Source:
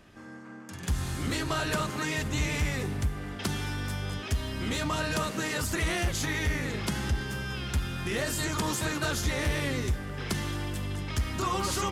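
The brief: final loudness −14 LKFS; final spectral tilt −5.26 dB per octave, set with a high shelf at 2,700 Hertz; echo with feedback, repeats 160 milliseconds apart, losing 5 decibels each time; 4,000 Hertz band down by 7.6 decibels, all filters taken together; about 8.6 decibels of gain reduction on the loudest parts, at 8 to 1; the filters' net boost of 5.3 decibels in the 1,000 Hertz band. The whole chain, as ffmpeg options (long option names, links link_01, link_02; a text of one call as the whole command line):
ffmpeg -i in.wav -af "equalizer=frequency=1000:width_type=o:gain=7.5,highshelf=frequency=2700:gain=-3,equalizer=frequency=4000:width_type=o:gain=-8,acompressor=threshold=-32dB:ratio=8,aecho=1:1:160|320|480|640|800|960|1120:0.562|0.315|0.176|0.0988|0.0553|0.031|0.0173,volume=21dB" out.wav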